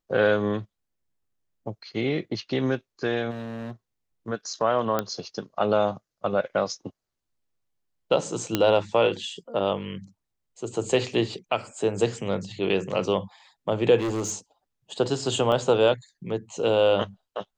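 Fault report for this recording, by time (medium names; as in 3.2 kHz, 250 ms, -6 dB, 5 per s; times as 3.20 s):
3.30–3.71 s: clipped -31.5 dBFS
4.99 s: pop -11 dBFS
8.55 s: pop -7 dBFS
13.97–14.35 s: clipped -24 dBFS
15.52 s: dropout 2.5 ms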